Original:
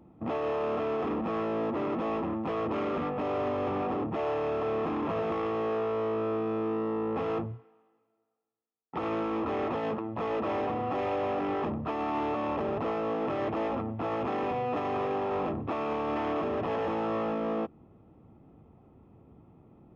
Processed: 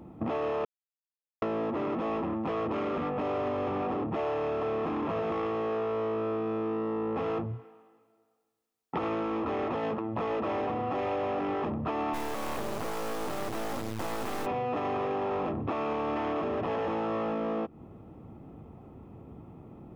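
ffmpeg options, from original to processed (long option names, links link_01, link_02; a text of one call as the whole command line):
ffmpeg -i in.wav -filter_complex "[0:a]asplit=3[link_01][link_02][link_03];[link_01]afade=type=out:start_time=12.13:duration=0.02[link_04];[link_02]acrusher=bits=4:dc=4:mix=0:aa=0.000001,afade=type=in:start_time=12.13:duration=0.02,afade=type=out:start_time=14.45:duration=0.02[link_05];[link_03]afade=type=in:start_time=14.45:duration=0.02[link_06];[link_04][link_05][link_06]amix=inputs=3:normalize=0,asplit=3[link_07][link_08][link_09];[link_07]atrim=end=0.65,asetpts=PTS-STARTPTS,afade=type=out:start_time=0.646:duration=0.004:curve=hsin[link_10];[link_08]atrim=start=0.65:end=1.42,asetpts=PTS-STARTPTS,volume=0[link_11];[link_09]atrim=start=1.42,asetpts=PTS-STARTPTS,afade=type=in:duration=0.004:curve=hsin[link_12];[link_10][link_11][link_12]concat=n=3:v=0:a=1,acompressor=threshold=-37dB:ratio=6,volume=8dB" out.wav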